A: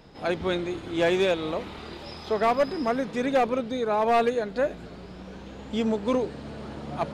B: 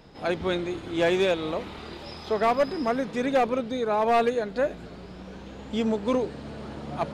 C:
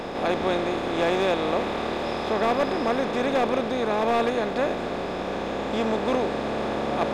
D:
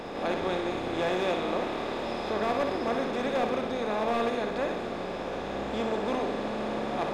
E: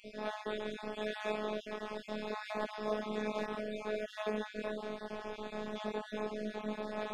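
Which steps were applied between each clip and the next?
no audible change
spectral levelling over time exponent 0.4; trim -4.5 dB
flutter echo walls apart 10.4 m, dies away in 0.57 s; trim -6 dB
random holes in the spectrogram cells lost 37%; chorus voices 2, 0.76 Hz, delay 21 ms, depth 4.8 ms; robot voice 213 Hz; trim -1.5 dB

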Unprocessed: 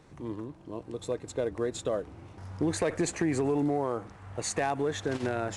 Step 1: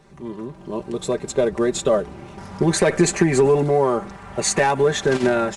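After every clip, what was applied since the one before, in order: comb 5.1 ms, depth 78%; level rider gain up to 8 dB; trim +2.5 dB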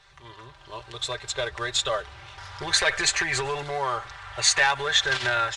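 FFT filter 120 Hz 0 dB, 190 Hz -29 dB, 490 Hz -9 dB, 1.6 kHz +8 dB, 2.4 kHz +6 dB, 3.5 kHz +13 dB, 11 kHz -4 dB; trim -4 dB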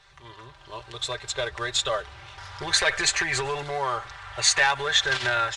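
no audible change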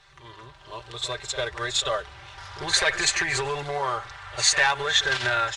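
pre-echo 49 ms -12 dB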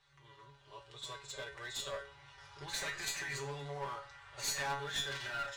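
feedback comb 140 Hz, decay 0.34 s, harmonics all, mix 90%; one-sided clip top -37 dBFS; trim -3.5 dB

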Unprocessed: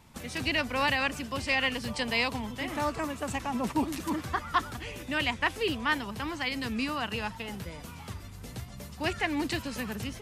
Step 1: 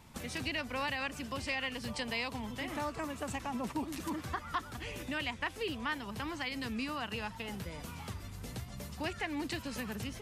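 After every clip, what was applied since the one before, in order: compression 2:1, threshold -39 dBFS, peak gain reduction 10 dB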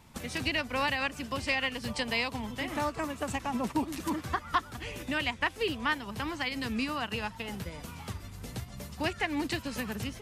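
upward expansion 1.5:1, over -46 dBFS; trim +8 dB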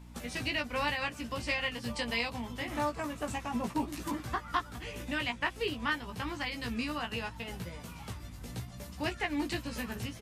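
doubling 17 ms -4 dB; hum 60 Hz, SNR 14 dB; trim -4 dB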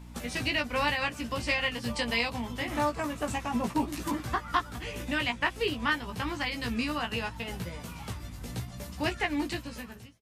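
fade out at the end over 0.99 s; trim +4 dB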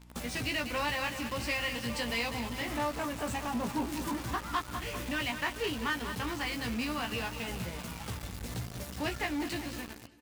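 feedback delay 197 ms, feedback 54%, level -12.5 dB; in parallel at -5 dB: companded quantiser 2-bit; on the sum: trim -8.5 dB

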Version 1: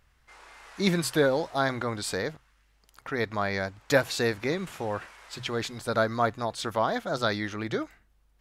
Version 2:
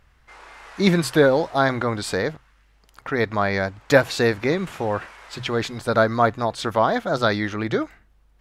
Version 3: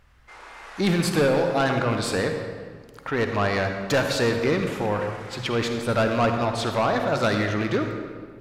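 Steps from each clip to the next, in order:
treble shelf 4.2 kHz -7.5 dB; trim +7.5 dB
rattle on loud lows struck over -24 dBFS, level -24 dBFS; saturation -16.5 dBFS, distortion -10 dB; reverberation RT60 1.8 s, pre-delay 44 ms, DRR 4.5 dB

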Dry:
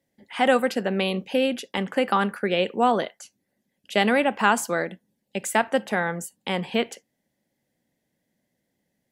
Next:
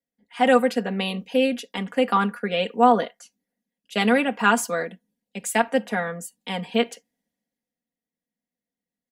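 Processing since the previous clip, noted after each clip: comb 4.2 ms, depth 76%; three bands expanded up and down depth 40%; trim -2 dB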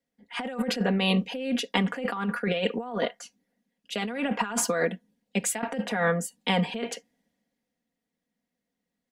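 treble shelf 8.1 kHz -11 dB; compressor with a negative ratio -29 dBFS, ratio -1; trim +1 dB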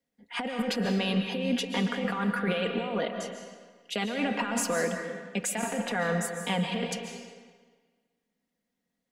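peak limiter -20 dBFS, peak gain reduction 11 dB; algorithmic reverb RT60 1.5 s, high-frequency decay 0.85×, pre-delay 100 ms, DRR 5 dB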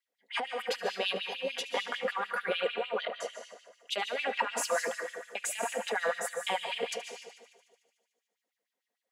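LFO high-pass sine 6.7 Hz 430–3400 Hz; feedback echo behind a high-pass 74 ms, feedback 77%, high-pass 5.3 kHz, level -15 dB; trim -3.5 dB

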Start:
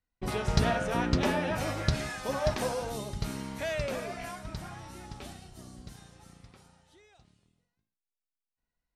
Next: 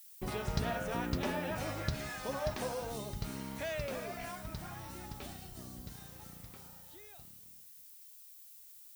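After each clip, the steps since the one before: compression 1.5:1, threshold -54 dBFS, peak gain reduction 12.5 dB; added noise violet -58 dBFS; trim +3 dB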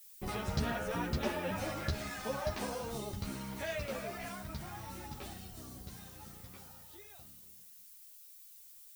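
three-phase chorus; trim +3.5 dB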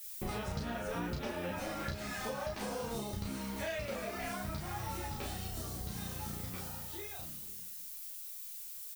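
compression 6:1, threshold -46 dBFS, peak gain reduction 16.5 dB; doubling 34 ms -3 dB; trim +8 dB

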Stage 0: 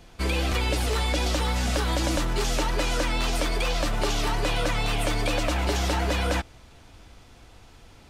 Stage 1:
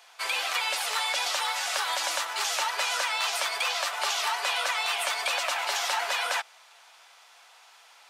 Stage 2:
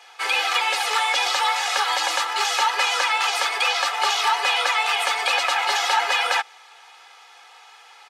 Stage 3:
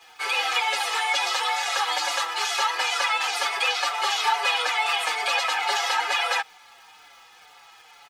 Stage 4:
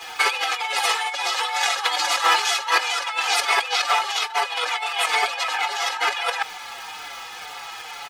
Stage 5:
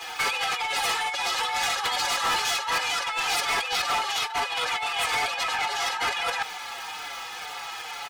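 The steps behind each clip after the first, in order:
high-pass 770 Hz 24 dB/octave; trim +2.5 dB
treble shelf 7.4 kHz -12 dB; comb 2.4 ms, depth 83%; trim +6 dB
crackle 360 per s -43 dBFS; endless flanger 5.7 ms -2.2 Hz
compressor with a negative ratio -30 dBFS, ratio -0.5; trim +8.5 dB
saturation -21.5 dBFS, distortion -9 dB

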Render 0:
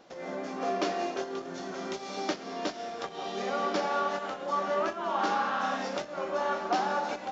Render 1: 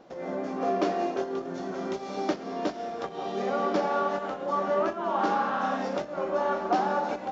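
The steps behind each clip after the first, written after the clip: tilt shelf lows +5.5 dB, about 1.4 kHz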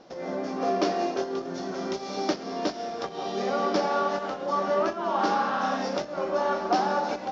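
resonant low-pass 5.4 kHz, resonance Q 2.9; trim +1 dB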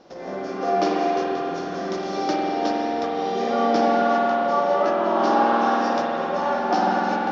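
spring tank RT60 3.5 s, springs 47 ms, chirp 50 ms, DRR -3.5 dB

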